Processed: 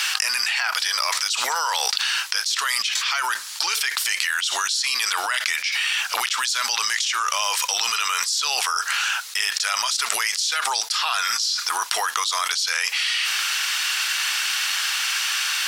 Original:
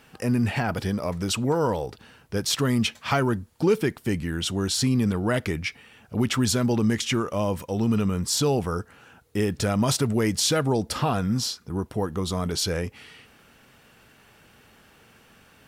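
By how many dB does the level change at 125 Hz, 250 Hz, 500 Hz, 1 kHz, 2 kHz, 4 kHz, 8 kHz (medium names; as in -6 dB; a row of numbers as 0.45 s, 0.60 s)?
under -40 dB, under -30 dB, -14.5 dB, +7.0 dB, +12.5 dB, +11.0 dB, +9.0 dB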